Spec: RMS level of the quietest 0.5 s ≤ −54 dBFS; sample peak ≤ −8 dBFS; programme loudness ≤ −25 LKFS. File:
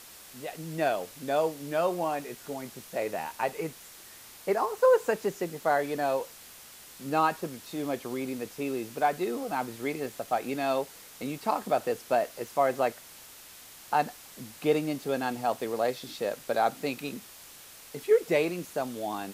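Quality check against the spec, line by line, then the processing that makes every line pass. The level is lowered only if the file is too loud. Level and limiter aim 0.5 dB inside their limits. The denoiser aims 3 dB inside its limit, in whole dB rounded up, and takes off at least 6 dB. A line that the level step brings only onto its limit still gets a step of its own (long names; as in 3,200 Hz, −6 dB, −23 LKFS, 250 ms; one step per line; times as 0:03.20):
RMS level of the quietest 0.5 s −50 dBFS: out of spec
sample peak −12.0 dBFS: in spec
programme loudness −30.0 LKFS: in spec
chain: broadband denoise 7 dB, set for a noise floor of −50 dBFS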